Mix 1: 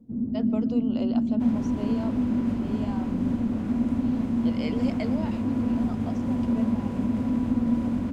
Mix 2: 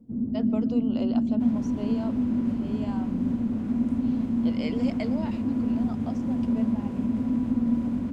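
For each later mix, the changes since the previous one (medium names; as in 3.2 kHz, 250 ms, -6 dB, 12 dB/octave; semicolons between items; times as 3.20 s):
second sound -5.0 dB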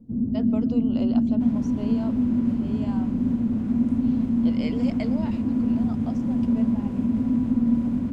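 first sound: add bass shelf 190 Hz +8.5 dB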